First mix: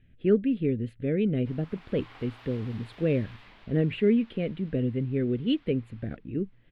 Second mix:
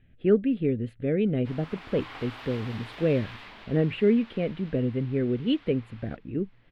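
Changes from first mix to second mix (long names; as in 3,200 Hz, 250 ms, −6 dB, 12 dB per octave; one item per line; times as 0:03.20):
speech: add parametric band 870 Hz +7.5 dB 1.2 octaves
background +8.5 dB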